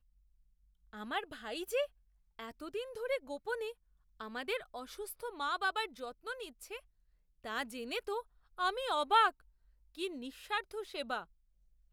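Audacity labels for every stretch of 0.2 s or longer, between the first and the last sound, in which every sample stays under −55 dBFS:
1.870000	2.390000	silence
3.730000	4.200000	silence
6.800000	7.440000	silence
8.230000	8.580000	silence
9.400000	9.950000	silence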